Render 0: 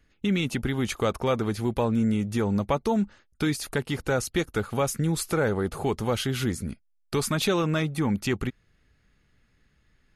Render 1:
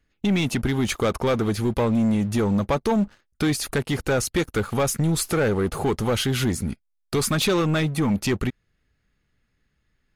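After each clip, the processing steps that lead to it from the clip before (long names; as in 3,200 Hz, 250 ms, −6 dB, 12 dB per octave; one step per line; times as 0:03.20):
leveller curve on the samples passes 2
level −1.5 dB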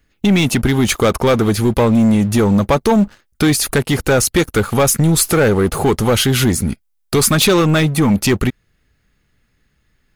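high-shelf EQ 10,000 Hz +8 dB
level +8.5 dB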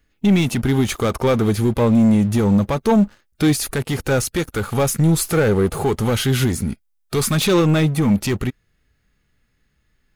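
harmonic and percussive parts rebalanced harmonic +7 dB
level −8.5 dB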